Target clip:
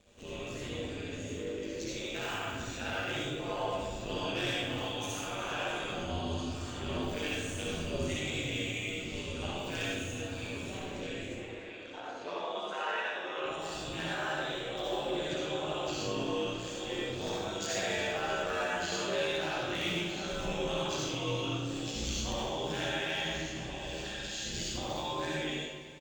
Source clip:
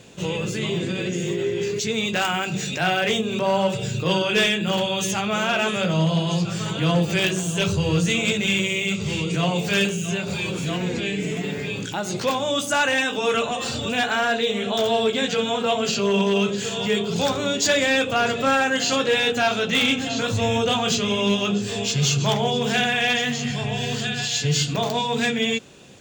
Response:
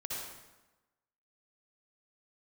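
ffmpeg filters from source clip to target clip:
-filter_complex "[0:a]tremolo=f=100:d=0.71,flanger=delay=1.7:depth=3.6:regen=-39:speed=0.54:shape=triangular,aeval=exprs='val(0)*sin(2*PI*80*n/s)':channel_layout=same,asettb=1/sr,asplit=3[link_01][link_02][link_03];[link_01]atrim=end=11.284[link_04];[link_02]atrim=start=11.28:end=13.46,asetpts=PTS-STARTPTS,afade=type=in:duration=0.004:curve=qsin,afade=type=out:start_time=2.176:duration=0.004:curve=qsin,highpass=360,lowpass=3200[link_05];[link_03]atrim=start=13.456[link_06];[link_04][link_05]acrossfade=duration=0.004:curve1=hsin:curve2=qsin[link_07];[link_07][link_06]acrossfade=duration=0.004:curve1=qsin:curve2=hsin,aecho=1:1:291|582|873|1164|1455:0.158|0.0856|0.0462|0.025|0.0135[link_08];[1:a]atrim=start_sample=2205[link_09];[link_08][link_09]afir=irnorm=-1:irlink=0,volume=-4.5dB"

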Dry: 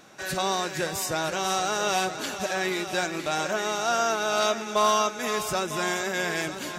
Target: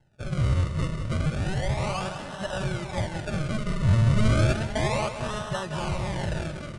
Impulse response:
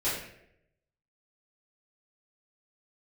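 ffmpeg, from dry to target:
-filter_complex "[0:a]asplit=2[link_01][link_02];[link_02]alimiter=limit=-24dB:level=0:latency=1:release=33,volume=-1.5dB[link_03];[link_01][link_03]amix=inputs=2:normalize=0,afwtdn=0.0501,acrusher=samples=37:mix=1:aa=0.000001:lfo=1:lforange=37:lforate=0.32,bass=frequency=250:gain=-6,treble=frequency=4000:gain=-4,aecho=1:1:3.4:0.37,asplit=2[link_04][link_05];[link_05]aecho=0:1:183|366|549|732:0.316|0.13|0.0532|0.0218[link_06];[link_04][link_06]amix=inputs=2:normalize=0,aresample=22050,aresample=44100,lowshelf=frequency=200:width_type=q:width=3:gain=13,asettb=1/sr,asplit=3[link_07][link_08][link_09];[link_07]atrim=end=4.164[link_10];[link_08]atrim=start=4.16:end=4.67,asetpts=PTS-STARTPTS,afade=type=in:duration=0.004:curve=qsin,afade=type=out:start_time=0.506:duration=0.004:curve=qsin,acontrast=21[link_11];[link_09]atrim=start=4.666[link_12];[link_10][link_11]acrossfade=duration=0.004:curve1=hsin:curve2=qsin[link_13];[link_13][link_12]acrossfade=duration=0.004:curve1=qsin:curve2=hsin,volume=-5dB"

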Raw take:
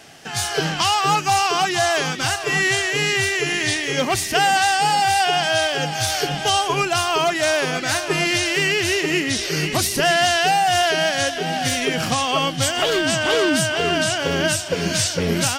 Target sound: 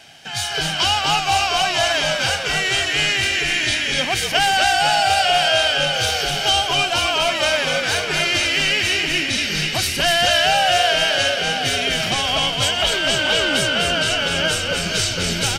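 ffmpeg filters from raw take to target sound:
ffmpeg -i in.wav -filter_complex "[0:a]equalizer=frequency=3100:width_type=o:width=1.4:gain=8,aecho=1:1:1.3:0.4,asplit=2[link_01][link_02];[link_02]asplit=7[link_03][link_04][link_05][link_06][link_07][link_08][link_09];[link_03]adelay=248,afreqshift=-71,volume=-4dB[link_10];[link_04]adelay=496,afreqshift=-142,volume=-9.8dB[link_11];[link_05]adelay=744,afreqshift=-213,volume=-15.7dB[link_12];[link_06]adelay=992,afreqshift=-284,volume=-21.5dB[link_13];[link_07]adelay=1240,afreqshift=-355,volume=-27.4dB[link_14];[link_08]adelay=1488,afreqshift=-426,volume=-33.2dB[link_15];[link_09]adelay=1736,afreqshift=-497,volume=-39.1dB[link_16];[link_10][link_11][link_12][link_13][link_14][link_15][link_16]amix=inputs=7:normalize=0[link_17];[link_01][link_17]amix=inputs=2:normalize=0,volume=-5dB" out.wav

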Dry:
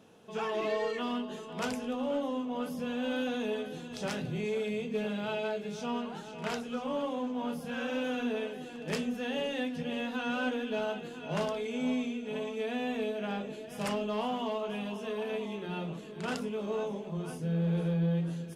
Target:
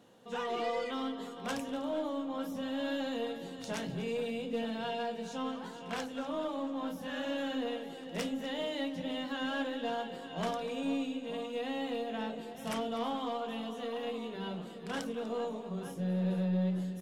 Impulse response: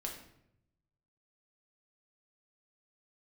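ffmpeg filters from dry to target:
-filter_complex "[0:a]asetrate=48069,aresample=44100,aeval=exprs='0.0891*(cos(1*acos(clip(val(0)/0.0891,-1,1)))-cos(1*PI/2))+0.002*(cos(4*acos(clip(val(0)/0.0891,-1,1)))-cos(4*PI/2))':channel_layout=same,asplit=2[link_01][link_02];[link_02]adelay=244.9,volume=-14dB,highshelf=frequency=4000:gain=-5.51[link_03];[link_01][link_03]amix=inputs=2:normalize=0,volume=-2.5dB"

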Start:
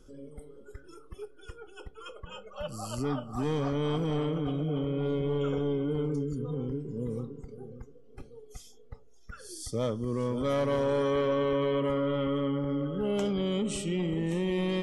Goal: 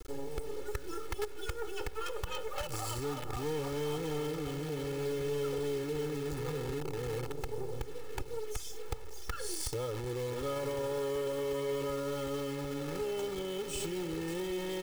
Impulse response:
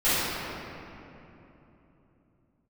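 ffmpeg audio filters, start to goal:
-filter_complex "[0:a]asplit=2[link_01][link_02];[1:a]atrim=start_sample=2205,afade=type=out:start_time=0.23:duration=0.01,atrim=end_sample=10584[link_03];[link_02][link_03]afir=irnorm=-1:irlink=0,volume=-37.5dB[link_04];[link_01][link_04]amix=inputs=2:normalize=0,acrusher=bits=7:dc=4:mix=0:aa=0.000001,alimiter=level_in=8dB:limit=-24dB:level=0:latency=1:release=64,volume=-8dB,acompressor=threshold=-43dB:ratio=6,aecho=1:1:2.3:0.85,volume=8dB"

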